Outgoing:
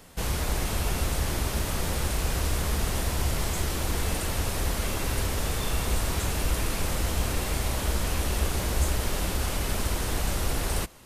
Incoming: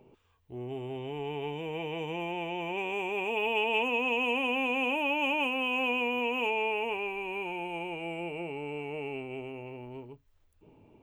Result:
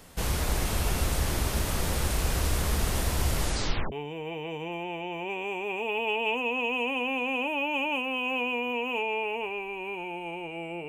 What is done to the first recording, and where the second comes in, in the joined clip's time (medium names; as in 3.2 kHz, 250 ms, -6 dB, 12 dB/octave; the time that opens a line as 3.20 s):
outgoing
3.39 s: tape stop 0.53 s
3.92 s: go over to incoming from 1.40 s